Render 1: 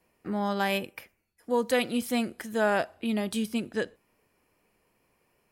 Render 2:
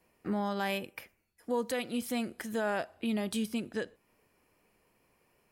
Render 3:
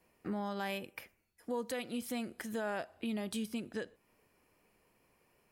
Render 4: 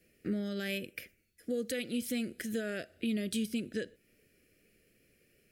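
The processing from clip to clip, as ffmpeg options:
ffmpeg -i in.wav -af "alimiter=limit=-23dB:level=0:latency=1:release=321" out.wav
ffmpeg -i in.wav -af "acompressor=threshold=-40dB:ratio=1.5,volume=-1dB" out.wav
ffmpeg -i in.wav -af "asuperstop=centerf=930:order=4:qfactor=0.84,volume=4.5dB" out.wav

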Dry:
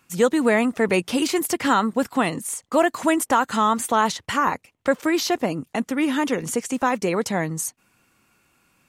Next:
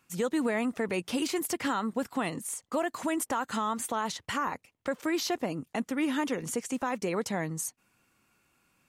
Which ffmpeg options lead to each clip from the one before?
ffmpeg -i in.wav -af "alimiter=limit=-13.5dB:level=0:latency=1:release=104,volume=-7dB" out.wav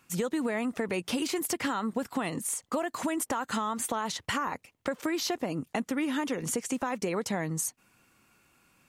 ffmpeg -i in.wav -af "acompressor=threshold=-32dB:ratio=6,volume=5dB" out.wav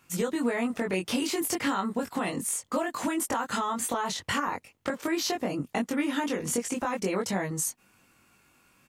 ffmpeg -i in.wav -filter_complex "[0:a]asplit=2[link_01][link_02];[link_02]adelay=21,volume=-2dB[link_03];[link_01][link_03]amix=inputs=2:normalize=0" out.wav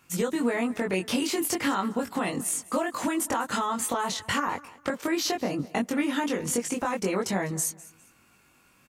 ffmpeg -i in.wav -af "aecho=1:1:202|404:0.1|0.029,volume=1.5dB" out.wav

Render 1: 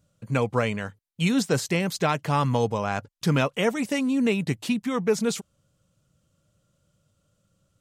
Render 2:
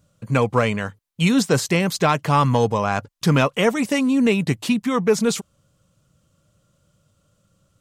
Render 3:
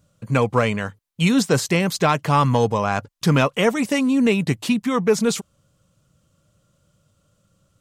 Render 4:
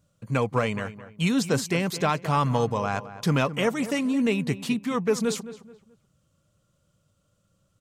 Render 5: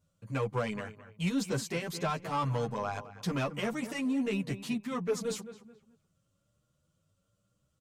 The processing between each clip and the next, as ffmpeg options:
ffmpeg -i in.wav -af "equalizer=frequency=1100:width=4.1:gain=3.5,acontrast=67,volume=-1dB" out.wav
ffmpeg -i in.wav -af anull out.wav
ffmpeg -i in.wav -filter_complex "[0:a]asplit=2[link_01][link_02];[link_02]adelay=215,lowpass=frequency=2300:poles=1,volume=-13.5dB,asplit=2[link_03][link_04];[link_04]adelay=215,lowpass=frequency=2300:poles=1,volume=0.34,asplit=2[link_05][link_06];[link_06]adelay=215,lowpass=frequency=2300:poles=1,volume=0.34[link_07];[link_01][link_03][link_05][link_07]amix=inputs=4:normalize=0,volume=-6dB" out.wav
ffmpeg -i in.wav -filter_complex "[0:a]asoftclip=type=tanh:threshold=-17dB,asplit=2[link_01][link_02];[link_02]adelay=9.2,afreqshift=1[link_03];[link_01][link_03]amix=inputs=2:normalize=1,volume=-4dB" out.wav

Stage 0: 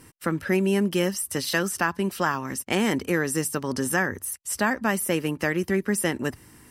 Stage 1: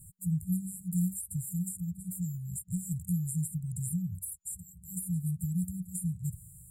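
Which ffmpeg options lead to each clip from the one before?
ffmpeg -i in.wav -filter_complex "[0:a]afftfilt=real='re*(1-between(b*sr/4096,190,7000))':imag='im*(1-between(b*sr/4096,190,7000))':win_size=4096:overlap=0.75,acrossover=split=430|810|3000[link_01][link_02][link_03][link_04];[link_04]acompressor=threshold=-40dB:ratio=6[link_05];[link_01][link_02][link_03][link_05]amix=inputs=4:normalize=0,volume=2dB" out.wav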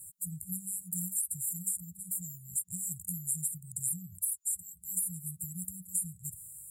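ffmpeg -i in.wav -af "bass=frequency=250:gain=-7,treble=frequency=4000:gain=14,volume=-6.5dB" out.wav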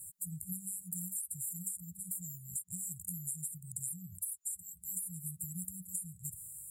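ffmpeg -i in.wav -af "acompressor=threshold=-36dB:ratio=6" out.wav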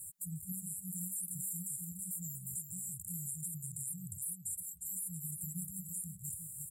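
ffmpeg -i in.wav -af "aecho=1:1:355:0.422,alimiter=level_in=6.5dB:limit=-24dB:level=0:latency=1:release=21,volume=-6.5dB,volume=1dB" out.wav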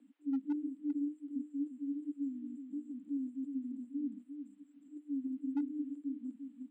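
ffmpeg -i in.wav -af "highpass=frequency=150:width_type=q:width=0.5412,highpass=frequency=150:width_type=q:width=1.307,lowpass=frequency=3200:width_type=q:width=0.5176,lowpass=frequency=3200:width_type=q:width=0.7071,lowpass=frequency=3200:width_type=q:width=1.932,afreqshift=110,asoftclip=type=hard:threshold=-39.5dB,volume=11dB" out.wav

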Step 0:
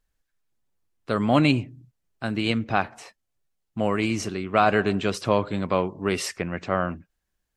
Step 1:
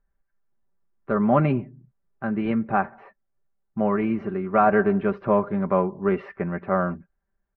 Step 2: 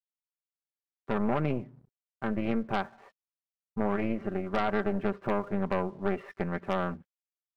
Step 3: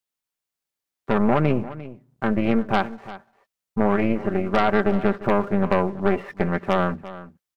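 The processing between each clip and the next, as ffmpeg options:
ffmpeg -i in.wav -af "lowpass=frequency=1700:width=0.5412,lowpass=frequency=1700:width=1.3066,aecho=1:1:5.1:0.63" out.wav
ffmpeg -i in.wav -af "acompressor=threshold=-20dB:ratio=6,aeval=exprs='sgn(val(0))*max(abs(val(0))-0.00133,0)':channel_layout=same,aeval=exprs='0.251*(cos(1*acos(clip(val(0)/0.251,-1,1)))-cos(1*PI/2))+0.0794*(cos(4*acos(clip(val(0)/0.251,-1,1)))-cos(4*PI/2))+0.0178*(cos(5*acos(clip(val(0)/0.251,-1,1)))-cos(5*PI/2))':channel_layout=same,volume=-7dB" out.wav
ffmpeg -i in.wav -af "aecho=1:1:349:0.158,volume=9dB" out.wav

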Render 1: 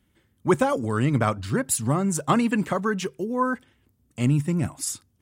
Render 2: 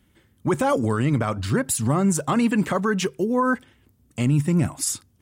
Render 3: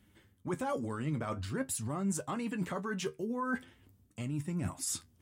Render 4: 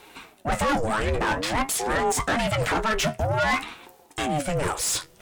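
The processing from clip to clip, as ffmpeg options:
ffmpeg -i in.wav -af "alimiter=limit=-18dB:level=0:latency=1:release=74,volume=5.5dB" out.wav
ffmpeg -i in.wav -af "areverse,acompressor=threshold=-30dB:ratio=4,areverse,flanger=delay=9.8:depth=3.2:regen=51:speed=0.47:shape=sinusoidal" out.wav
ffmpeg -i in.wav -filter_complex "[0:a]asplit=2[link_01][link_02];[link_02]highpass=frequency=720:poles=1,volume=24dB,asoftclip=type=tanh:threshold=-22dB[link_03];[link_01][link_03]amix=inputs=2:normalize=0,lowpass=frequency=6100:poles=1,volume=-6dB,aeval=exprs='val(0)*sin(2*PI*420*n/s+420*0.5/0.51*sin(2*PI*0.51*n/s))':channel_layout=same,volume=9dB" out.wav

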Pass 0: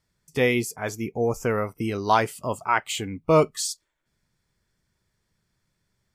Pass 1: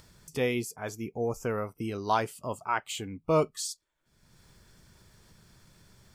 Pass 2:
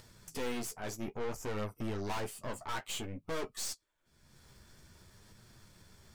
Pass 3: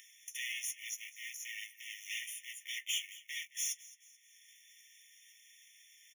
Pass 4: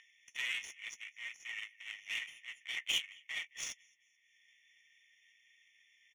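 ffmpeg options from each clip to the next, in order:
ffmpeg -i in.wav -af "equalizer=frequency=2000:width=3.9:gain=-5,acompressor=mode=upward:threshold=-32dB:ratio=2.5,volume=-6.5dB" out.wav
ffmpeg -i in.wav -af "aeval=exprs='(tanh(79.4*val(0)+0.65)-tanh(0.65))/79.4':channel_layout=same,equalizer=frequency=160:width_type=o:width=0.33:gain=-3.5,flanger=delay=8.1:depth=7.2:regen=-27:speed=0.55:shape=triangular,volume=6.5dB" out.wav
ffmpeg -i in.wav -af "aecho=1:1:217|434|651|868:0.112|0.0516|0.0237|0.0109,acrusher=bits=4:mode=log:mix=0:aa=0.000001,afftfilt=real='re*eq(mod(floor(b*sr/1024/1800),2),1)':imag='im*eq(mod(floor(b*sr/1024/1800),2),1)':win_size=1024:overlap=0.75,volume=6.5dB" out.wav
ffmpeg -i in.wav -af "adynamicsmooth=sensitivity=5.5:basefreq=1900,volume=5.5dB" out.wav

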